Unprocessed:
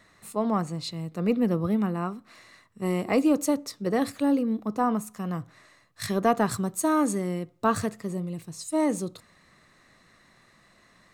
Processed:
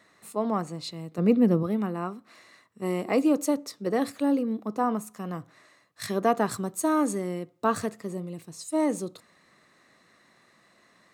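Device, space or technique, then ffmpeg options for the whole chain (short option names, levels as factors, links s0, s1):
filter by subtraction: -filter_complex "[0:a]asettb=1/sr,asplit=3[s0][s1][s2];[s0]atrim=end=1.184[s3];[s1]atrim=start=1.18:end=1.63,asetpts=PTS-STARTPTS,afade=t=in:d=0.004:c=qsin,afade=t=out:st=0.446:d=0.004:c=qsin,lowshelf=f=260:g=11[s4];[s2]atrim=start=1.626[s5];[s3][s4]acrossfade=d=0.004:c1=hsin:c2=qsin[s6];[s6][s5]acrossfade=d=0.004:c1=qsin:c2=hsin,asplit=2[s7][s8];[s8]lowpass=340,volume=-1[s9];[s7][s9]amix=inputs=2:normalize=0,volume=0.794"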